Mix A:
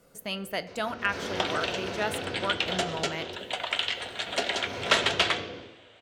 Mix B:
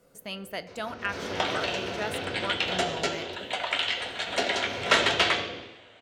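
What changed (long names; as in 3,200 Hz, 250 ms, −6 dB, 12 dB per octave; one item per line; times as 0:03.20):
speech −3.5 dB
second sound: send +6.5 dB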